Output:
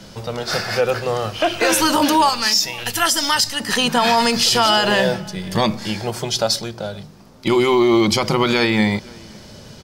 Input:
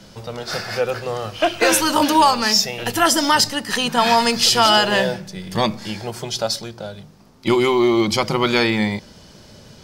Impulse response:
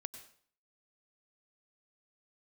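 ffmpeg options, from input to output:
-filter_complex "[0:a]asettb=1/sr,asplit=3[a][b][c];[a]atrim=end=2.294[d];[b]atrim=start=2.29:end=3.6,asetpts=PTS-STARTPTS,afade=t=in:d=0.004:c=qsin,afade=t=out:st=1.306:d=0.004:c=qsin,equalizer=f=340:w=0.3:g=-11.5[e];[c]atrim=start=3.596[f];[d][e]acrossfade=d=0.004:c1=hsin:c2=qsin[g];[g][f]acrossfade=d=0.004:c1=qsin:c2=hsin,asplit=2[h][i];[i]adelay=513.1,volume=-29dB,highshelf=f=4k:g=-11.5[j];[h][j]amix=inputs=2:normalize=0,alimiter=level_in=10dB:limit=-1dB:release=50:level=0:latency=1,volume=-6dB"

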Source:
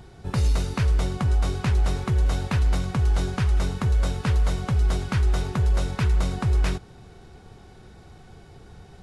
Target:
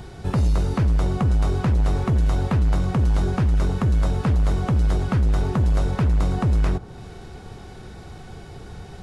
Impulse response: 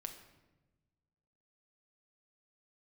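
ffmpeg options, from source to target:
-filter_complex "[0:a]acrossover=split=1400[a][b];[a]asoftclip=type=tanh:threshold=-23.5dB[c];[b]acompressor=threshold=-50dB:ratio=6[d];[c][d]amix=inputs=2:normalize=0,volume=8dB"

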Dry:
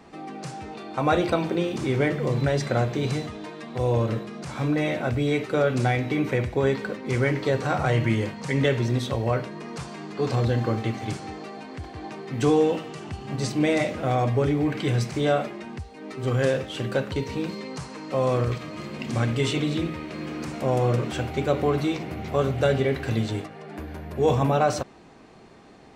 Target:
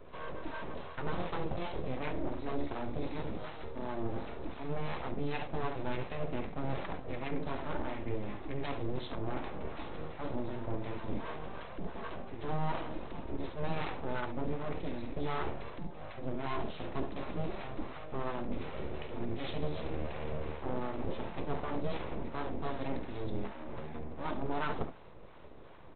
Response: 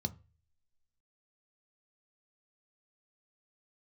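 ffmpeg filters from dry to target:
-filter_complex "[1:a]atrim=start_sample=2205,afade=t=out:st=0.14:d=0.01,atrim=end_sample=6615[a];[0:a][a]afir=irnorm=-1:irlink=0,areverse,acompressor=threshold=-22dB:ratio=6,areverse,lowshelf=f=160:g=-7.5,aecho=1:1:49|70:0.188|0.237,aresample=8000,aeval=exprs='abs(val(0))':c=same,aresample=44100,acrossover=split=700[b][c];[b]aeval=exprs='val(0)*(1-0.5/2+0.5/2*cos(2*PI*2.7*n/s))':c=same[d];[c]aeval=exprs='val(0)*(1-0.5/2-0.5/2*cos(2*PI*2.7*n/s))':c=same[e];[d][e]amix=inputs=2:normalize=0,volume=-3.5dB"

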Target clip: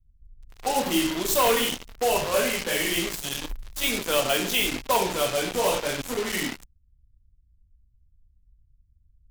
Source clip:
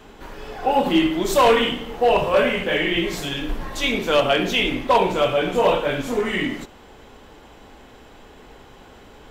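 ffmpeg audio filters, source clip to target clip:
-filter_complex "[0:a]acrossover=split=100[a][b];[b]acrusher=bits=3:mix=0:aa=0.5[c];[a][c]amix=inputs=2:normalize=0,crystalizer=i=2:c=0,volume=-7dB"

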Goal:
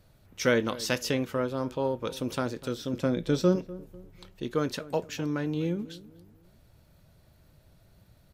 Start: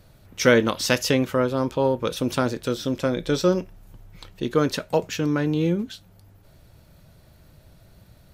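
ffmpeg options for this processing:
-filter_complex "[0:a]asettb=1/sr,asplit=3[a][b][c];[a]atrim=end=2.934[d];[b]atrim=start=2.93:end=3.56,asetpts=PTS-STARTPTS,afade=t=in:d=0.004:c=qsin,afade=t=out:st=0.626:d=0.004:c=qsin,equalizer=f=190:t=o:w=2.1:g=7[e];[c]atrim=start=3.556[f];[d][e]acrossfade=d=0.004:c1=hsin:c2=qsin[g];[g][f]acrossfade=d=0.004:c1=qsin:c2=hsin,asplit=2[h][i];[i]adelay=247,lowpass=f=990:p=1,volume=-17dB,asplit=2[j][k];[k]adelay=247,lowpass=f=990:p=1,volume=0.4,asplit=2[l][m];[m]adelay=247,lowpass=f=990:p=1,volume=0.4[n];[h][j][l][n]amix=inputs=4:normalize=0,volume=-7.5dB"

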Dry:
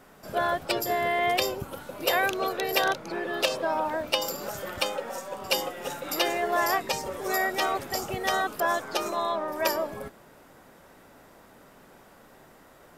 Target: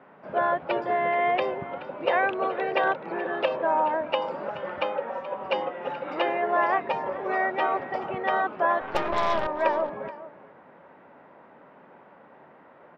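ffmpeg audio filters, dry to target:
-filter_complex "[0:a]highpass=f=100:w=0.5412,highpass=f=100:w=1.3066,equalizer=f=110:t=q:w=4:g=-10,equalizer=f=560:t=q:w=4:g=4,equalizer=f=920:t=q:w=4:g=6,lowpass=f=2.5k:w=0.5412,lowpass=f=2.5k:w=1.3066,asettb=1/sr,asplit=3[a][b][c];[a]atrim=end=8.814[d];[b]atrim=start=8.81:end=9.47,asetpts=PTS-STARTPTS,afade=t=in:d=0.004:c=qsin,afade=t=out:st=0.656:d=0.004:c=qsin,aeval=exprs='0.2*(cos(1*acos(clip(val(0)/0.2,-1,1)))-cos(1*PI/2))+0.02*(cos(4*acos(clip(val(0)/0.2,-1,1)))-cos(4*PI/2))+0.02*(cos(8*acos(clip(val(0)/0.2,-1,1)))-cos(8*PI/2))':c=same[e];[c]atrim=start=9.466[f];[d][e]acrossfade=d=0.004:c1=hsin:c2=qsin[g];[g][f]acrossfade=d=0.004:c1=qsin:c2=hsin,aecho=1:1:427:0.158"

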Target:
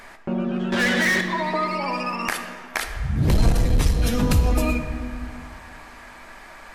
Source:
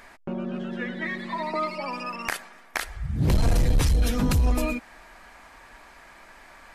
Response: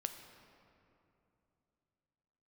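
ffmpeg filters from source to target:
-filter_complex "[0:a]asettb=1/sr,asplit=3[a][b][c];[a]atrim=end=3.524[d];[b]atrim=start=3.52:end=4,asetpts=PTS-STARTPTS,afade=t=in:d=0.004:c=qsin,afade=t=out:st=0.476:d=0.004:c=qsin,agate=range=-33dB:threshold=-16dB:ratio=3:detection=peak[e];[c]atrim=start=3.996[f];[d][e]acrossfade=d=0.004:c1=hsin:c2=qsin[g];[g][f]acrossfade=d=0.004:c1=qsin:c2=hsin,asplit=2[h][i];[i]alimiter=limit=-22.5dB:level=0:latency=1,volume=0dB[j];[h][j]amix=inputs=2:normalize=0,asettb=1/sr,asplit=3[k][l][m];[k]atrim=end=0.724[n];[l]atrim=start=0.72:end=1.21,asetpts=PTS-STARTPTS,afade=t=in:d=0.004:c=qsin,afade=t=out:st=0.486:d=0.004:c=qsin,asplit=2[o][p];[p]highpass=f=720:p=1,volume=27dB,asoftclip=type=tanh:threshold=-14.5dB[q];[o][q]amix=inputs=2:normalize=0,lowpass=f=7k:p=1,volume=-6dB[r];[m]atrim=start=1.206[s];[n][r]acrossfade=d=0.004:c1=hsin:c2=qsin[t];[t][s]acrossfade=d=0.004:c1=qsin:c2=hsin[u];[1:a]atrim=start_sample=2205,asetrate=57330,aresample=44100[v];[u][v]afir=irnorm=-1:irlink=0,volume=3.5dB"

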